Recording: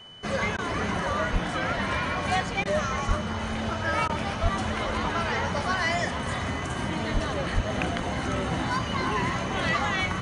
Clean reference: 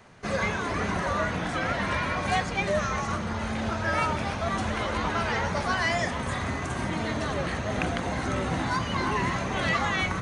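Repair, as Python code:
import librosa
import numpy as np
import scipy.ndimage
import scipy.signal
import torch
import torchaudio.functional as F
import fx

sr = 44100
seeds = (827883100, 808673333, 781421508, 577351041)

y = fx.notch(x, sr, hz=3000.0, q=30.0)
y = fx.fix_deplosive(y, sr, at_s=(1.32, 3.07, 4.42, 7.13, 7.54))
y = fx.fix_interpolate(y, sr, at_s=(0.57, 2.64, 4.08), length_ms=13.0)
y = fx.fix_echo_inverse(y, sr, delay_ms=432, level_db=-16.0)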